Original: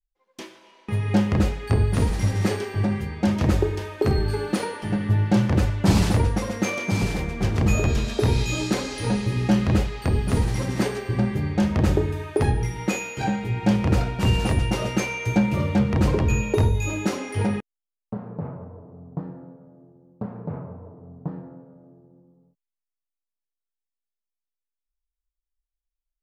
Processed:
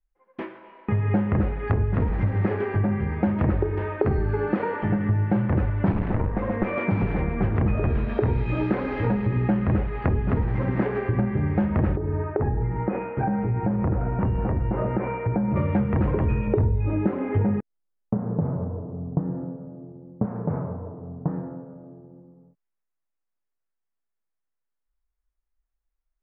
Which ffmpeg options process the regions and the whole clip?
ffmpeg -i in.wav -filter_complex "[0:a]asettb=1/sr,asplit=3[link_01][link_02][link_03];[link_01]atrim=end=5.924[link_04];[link_02]atrim=start=5.92:end=6.76,asetpts=PTS-STARTPTS,afade=type=in:duration=0.004:curve=qsin,afade=type=out:start_time=0.836:duration=0.004:curve=qsin,lowpass=frequency=3200:poles=1,bandreject=frequency=1400:width=23,aeval=exprs='clip(val(0),-1,0.0473)':channel_layout=same[link_05];[link_03]atrim=start=6.756[link_06];[link_04][link_05]acrossfade=duration=0.004:curve1=hsin:curve2=qsin[link_07];[link_07][link_06]acrossfade=duration=0.004:curve1=qsin:curve2=hsin,asettb=1/sr,asplit=3[link_08][link_09][link_10];[link_08]atrim=end=11.964[link_11];[link_09]atrim=start=11.96:end=15.56,asetpts=PTS-STARTPTS,afade=type=in:duration=0.004:curve=qsin,afade=type=out:start_time=3.596:duration=0.004:curve=qsin,lowpass=1300,acompressor=threshold=-25dB:ratio=3:attack=3.2:release=140:knee=1:detection=peak[link_12];[link_10]atrim=start=15.556[link_13];[link_11][link_12]acrossfade=duration=0.004:curve1=hsin:curve2=qsin[link_14];[link_14][link_13]acrossfade=duration=0.004:curve1=qsin:curve2=hsin,asettb=1/sr,asplit=3[link_15][link_16][link_17];[link_15]atrim=end=16.474[link_18];[link_16]atrim=start=16.47:end=20.25,asetpts=PTS-STARTPTS,afade=type=in:duration=0.004:curve=qsin,afade=type=out:start_time=3.776:duration=0.004:curve=qsin,lowpass=4100,tiltshelf=frequency=710:gain=5[link_19];[link_17]atrim=start=20.246[link_20];[link_18][link_19]acrossfade=duration=0.004:curve1=hsin:curve2=qsin[link_21];[link_21][link_20]acrossfade=duration=0.004:curve1=qsin:curve2=hsin,lowpass=frequency=2000:width=0.5412,lowpass=frequency=2000:width=1.3066,acompressor=threshold=-27dB:ratio=4,volume=6.5dB" out.wav

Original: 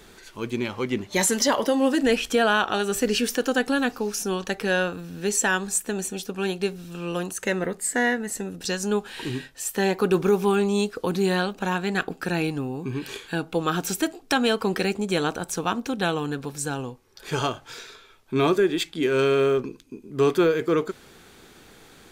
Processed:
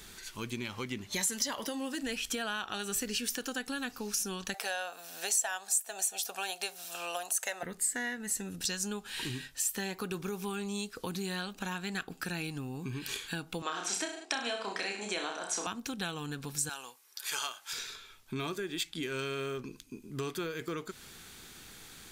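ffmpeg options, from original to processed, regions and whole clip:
ffmpeg -i in.wav -filter_complex "[0:a]asettb=1/sr,asplit=3[link_01][link_02][link_03];[link_01]atrim=end=4.544[link_04];[link_02]atrim=start=4.54:end=7.63,asetpts=PTS-STARTPTS,afade=type=in:duration=0.004:curve=qsin,afade=type=out:start_time=3.086:duration=0.004:curve=qsin,highpass=frequency=680:width_type=q:width=7.3,highshelf=frequency=4900:gain=7.5[link_05];[link_03]atrim=start=7.626[link_06];[link_04][link_05]acrossfade=duration=0.004:curve1=hsin:curve2=qsin[link_07];[link_07][link_06]acrossfade=duration=0.004:curve1=qsin:curve2=hsin,asettb=1/sr,asplit=3[link_08][link_09][link_10];[link_08]atrim=end=13.624[link_11];[link_09]atrim=start=13.62:end=15.67,asetpts=PTS-STARTPTS,afade=type=in:duration=0.004:curve=qsin,afade=type=out:start_time=2.046:duration=0.004:curve=qsin,highpass=frequency=270:width=0.5412,highpass=frequency=270:width=1.3066,equalizer=frequency=650:width_type=q:width=4:gain=10,equalizer=frequency=1000:width_type=q:width=4:gain=6,equalizer=frequency=2000:width_type=q:width=4:gain=6,lowpass=frequency=8000:width=0.5412,lowpass=frequency=8000:width=1.3066,aecho=1:1:30|63|99.3|139.2|183.2:0.631|0.398|0.251|0.158|0.1,atrim=end_sample=90405[link_12];[link_10]atrim=start=15.666[link_13];[link_11][link_12]acrossfade=duration=0.004:curve1=hsin:curve2=qsin[link_14];[link_14][link_13]acrossfade=duration=0.004:curve1=qsin:curve2=hsin,asettb=1/sr,asplit=3[link_15][link_16][link_17];[link_15]atrim=end=16.694[link_18];[link_16]atrim=start=16.69:end=17.73,asetpts=PTS-STARTPTS,afade=type=in:duration=0.004:curve=qsin,afade=type=out:start_time=1.036:duration=0.004:curve=qsin,highpass=770,equalizer=frequency=12000:width_type=o:width=1.1:gain=7[link_19];[link_17]atrim=start=17.726[link_20];[link_18][link_19]acrossfade=duration=0.004:curve1=hsin:curve2=qsin[link_21];[link_21][link_20]acrossfade=duration=0.004:curve1=qsin:curve2=hsin,equalizer=frequency=490:width=0.71:gain=-8,acompressor=threshold=-34dB:ratio=4,highshelf=frequency=3800:gain=7,volume=-1.5dB" out.wav

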